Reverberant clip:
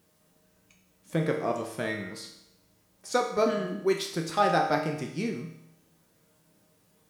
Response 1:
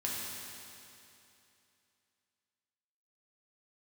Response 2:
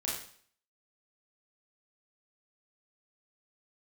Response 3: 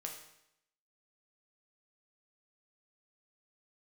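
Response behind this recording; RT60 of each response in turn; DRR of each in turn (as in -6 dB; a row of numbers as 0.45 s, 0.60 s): 3; 2.8 s, 0.55 s, 0.80 s; -5.0 dB, -5.5 dB, 0.5 dB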